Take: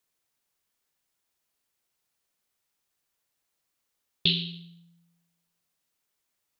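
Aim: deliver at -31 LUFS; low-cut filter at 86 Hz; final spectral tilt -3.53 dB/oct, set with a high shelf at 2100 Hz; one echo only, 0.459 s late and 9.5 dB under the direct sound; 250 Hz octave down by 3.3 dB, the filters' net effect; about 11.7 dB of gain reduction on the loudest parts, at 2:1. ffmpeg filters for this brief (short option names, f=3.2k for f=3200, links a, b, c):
-af "highpass=86,equalizer=f=250:t=o:g=-6.5,highshelf=f=2.1k:g=-9,acompressor=threshold=-49dB:ratio=2,aecho=1:1:459:0.335,volume=16.5dB"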